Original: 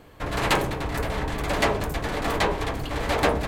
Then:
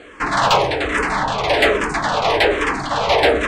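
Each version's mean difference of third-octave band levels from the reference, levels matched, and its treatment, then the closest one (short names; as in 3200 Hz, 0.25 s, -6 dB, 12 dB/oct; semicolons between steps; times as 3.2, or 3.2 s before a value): 7.0 dB: steep low-pass 9200 Hz 48 dB/oct; overdrive pedal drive 18 dB, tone 3700 Hz, clips at -6.5 dBFS; endless phaser -1.2 Hz; gain +5 dB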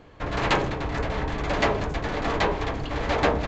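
4.5 dB: high shelf 5900 Hz -8 dB; on a send: echo 0.157 s -22 dB; on the sum: downsampling 16000 Hz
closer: second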